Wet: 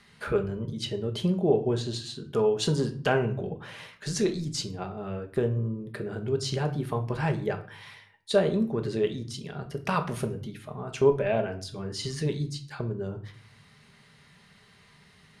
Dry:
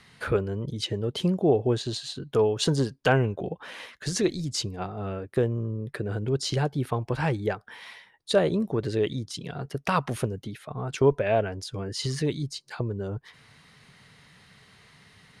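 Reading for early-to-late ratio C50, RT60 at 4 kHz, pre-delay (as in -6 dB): 13.0 dB, 0.35 s, 5 ms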